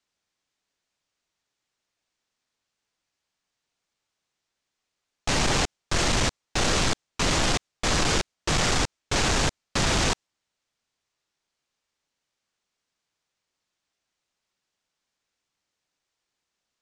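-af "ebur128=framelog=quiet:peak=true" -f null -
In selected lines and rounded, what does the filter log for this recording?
Integrated loudness:
  I:         -24.8 LUFS
  Threshold: -34.9 LUFS
Loudness range:
  LRA:         7.2 LU
  Threshold: -46.6 LUFS
  LRA low:   -31.8 LUFS
  LRA high:  -24.5 LUFS
True peak:
  Peak:      -15.8 dBFS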